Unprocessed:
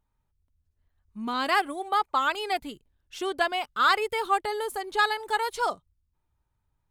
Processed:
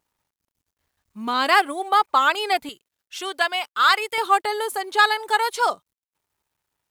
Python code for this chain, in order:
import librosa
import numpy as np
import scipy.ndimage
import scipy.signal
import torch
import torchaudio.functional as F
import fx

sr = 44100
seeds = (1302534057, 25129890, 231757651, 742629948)

y = fx.highpass(x, sr, hz=fx.steps((0.0, 360.0), (2.69, 1300.0), (4.18, 500.0)), slope=6)
y = fx.quant_companded(y, sr, bits=8)
y = y * librosa.db_to_amplitude(7.5)